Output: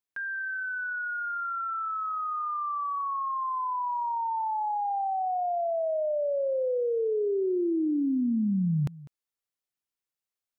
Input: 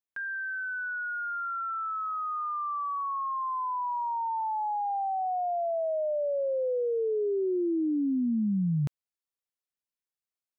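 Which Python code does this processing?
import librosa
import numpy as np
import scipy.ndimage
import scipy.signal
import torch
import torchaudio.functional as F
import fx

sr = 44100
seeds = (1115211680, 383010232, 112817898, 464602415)

y = x + 10.0 ** (-19.0 / 20.0) * np.pad(x, (int(200 * sr / 1000.0), 0))[:len(x)]
y = F.gain(torch.from_numpy(y), 1.0).numpy()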